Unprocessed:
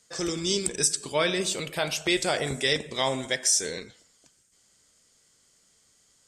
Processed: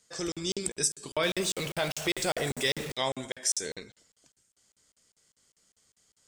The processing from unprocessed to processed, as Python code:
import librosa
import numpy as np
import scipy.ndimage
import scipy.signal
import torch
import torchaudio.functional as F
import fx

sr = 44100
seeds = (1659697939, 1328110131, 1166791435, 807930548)

y = fx.zero_step(x, sr, step_db=-30.0, at=(1.23, 2.92))
y = fx.buffer_crackle(y, sr, first_s=0.32, period_s=0.2, block=2048, kind='zero')
y = F.gain(torch.from_numpy(y), -4.0).numpy()